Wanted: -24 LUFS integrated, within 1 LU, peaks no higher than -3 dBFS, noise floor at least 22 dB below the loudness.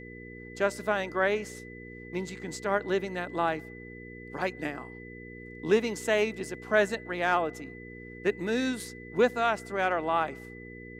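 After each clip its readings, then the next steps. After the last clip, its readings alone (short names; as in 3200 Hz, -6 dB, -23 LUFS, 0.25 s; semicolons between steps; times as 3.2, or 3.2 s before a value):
hum 60 Hz; harmonics up to 480 Hz; hum level -42 dBFS; steady tone 2000 Hz; tone level -47 dBFS; loudness -29.5 LUFS; peak -10.5 dBFS; loudness target -24.0 LUFS
-> de-hum 60 Hz, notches 8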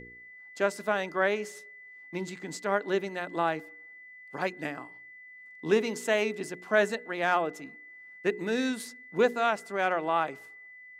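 hum none; steady tone 2000 Hz; tone level -47 dBFS
-> notch 2000 Hz, Q 30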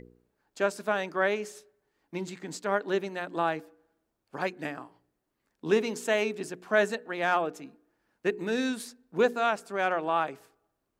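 steady tone none; loudness -30.0 LUFS; peak -11.0 dBFS; loudness target -24.0 LUFS
-> gain +6 dB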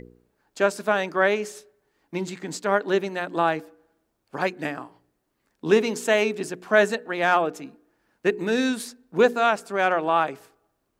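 loudness -24.0 LUFS; peak -5.0 dBFS; noise floor -75 dBFS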